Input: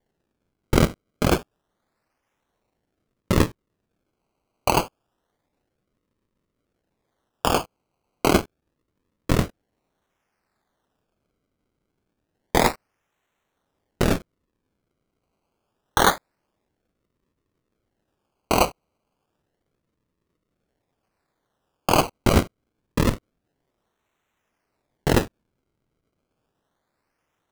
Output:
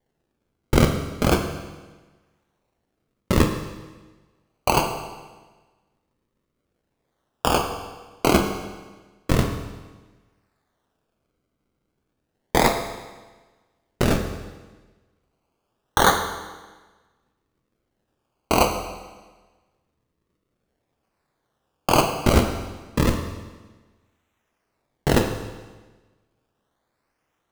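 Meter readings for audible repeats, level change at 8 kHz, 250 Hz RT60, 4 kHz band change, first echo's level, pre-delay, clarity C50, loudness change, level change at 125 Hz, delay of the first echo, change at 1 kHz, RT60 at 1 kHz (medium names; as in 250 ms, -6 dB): no echo, +1.0 dB, 1.4 s, +1.0 dB, no echo, 10 ms, 7.0 dB, +0.5 dB, +1.5 dB, no echo, +1.5 dB, 1.3 s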